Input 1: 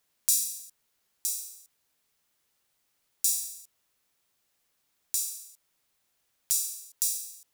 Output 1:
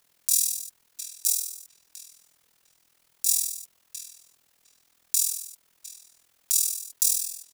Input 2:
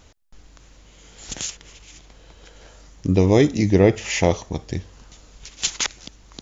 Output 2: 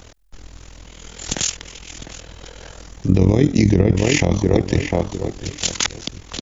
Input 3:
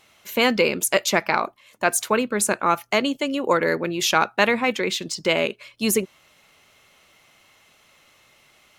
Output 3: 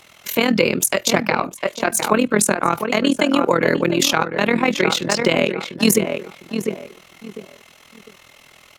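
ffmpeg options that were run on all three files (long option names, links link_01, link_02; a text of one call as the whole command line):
ffmpeg -i in.wav -filter_complex "[0:a]asplit=2[link_01][link_02];[link_02]adelay=702,lowpass=frequency=1800:poles=1,volume=-9dB,asplit=2[link_03][link_04];[link_04]adelay=702,lowpass=frequency=1800:poles=1,volume=0.27,asplit=2[link_05][link_06];[link_06]adelay=702,lowpass=frequency=1800:poles=1,volume=0.27[link_07];[link_01][link_03][link_05][link_07]amix=inputs=4:normalize=0,tremolo=f=41:d=0.824,acrossover=split=270[link_08][link_09];[link_09]acompressor=threshold=-26dB:ratio=4[link_10];[link_08][link_10]amix=inputs=2:normalize=0,alimiter=level_in=14dB:limit=-1dB:release=50:level=0:latency=1,volume=-2dB" out.wav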